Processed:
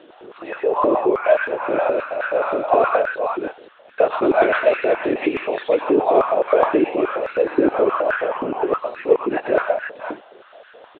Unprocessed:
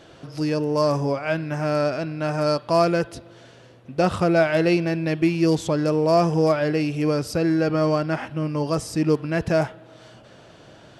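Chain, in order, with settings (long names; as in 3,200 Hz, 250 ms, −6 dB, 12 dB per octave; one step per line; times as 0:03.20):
linear-prediction vocoder at 8 kHz whisper
multi-tap delay 116/124/227/493 ms −18.5/−5/−18.5/−7 dB
high-pass on a step sequencer 9.5 Hz 320–1,500 Hz
level −1.5 dB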